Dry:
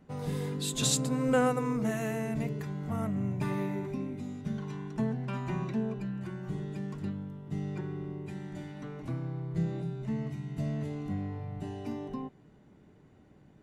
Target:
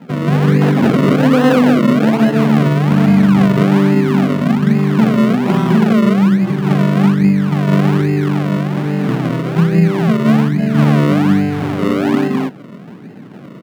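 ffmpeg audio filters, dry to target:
-filter_complex "[0:a]aecho=1:1:163.3|204.1:0.631|1,asplit=2[s0][s1];[s1]acompressor=threshold=0.0158:ratio=6,volume=1.19[s2];[s0][s2]amix=inputs=2:normalize=0,acrusher=samples=37:mix=1:aa=0.000001:lfo=1:lforange=37:lforate=1.2,highpass=f=180:w=0.5412,highpass=f=180:w=1.3066,bass=f=250:g=10,treble=f=4000:g=-14,alimiter=level_in=4.47:limit=0.891:release=50:level=0:latency=1,volume=0.891"

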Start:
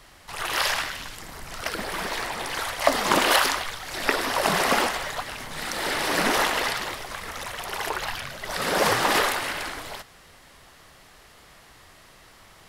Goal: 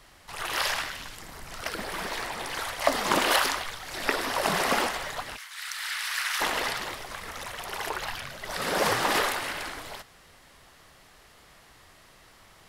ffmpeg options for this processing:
-filter_complex "[0:a]asplit=3[s0][s1][s2];[s0]afade=t=out:st=5.36:d=0.02[s3];[s1]highpass=f=1300:w=0.5412,highpass=f=1300:w=1.3066,afade=t=in:st=5.36:d=0.02,afade=t=out:st=6.4:d=0.02[s4];[s2]afade=t=in:st=6.4:d=0.02[s5];[s3][s4][s5]amix=inputs=3:normalize=0,volume=0.668"

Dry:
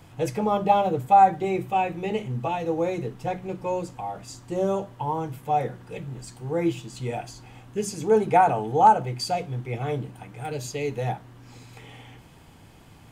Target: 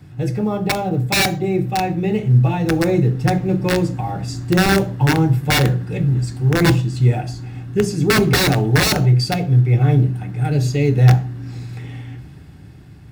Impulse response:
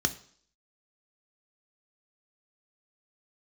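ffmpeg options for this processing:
-filter_complex "[0:a]acrusher=bits=9:mode=log:mix=0:aa=0.000001,dynaudnorm=f=430:g=9:m=2.99,aeval=exprs='(mod(3.55*val(0)+1,2)-1)/3.55':c=same,asplit=2[s0][s1];[s1]tiltshelf=f=850:g=5.5[s2];[1:a]atrim=start_sample=2205,afade=t=out:st=0.2:d=0.01,atrim=end_sample=9261[s3];[s2][s3]afir=irnorm=-1:irlink=0,volume=0.501[s4];[s0][s4]amix=inputs=2:normalize=0,volume=0.75"

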